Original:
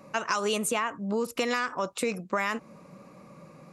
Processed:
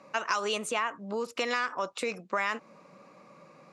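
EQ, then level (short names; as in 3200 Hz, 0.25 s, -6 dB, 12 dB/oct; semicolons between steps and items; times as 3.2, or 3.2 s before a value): HPF 500 Hz 6 dB/oct; LPF 6100 Hz 12 dB/oct; 0.0 dB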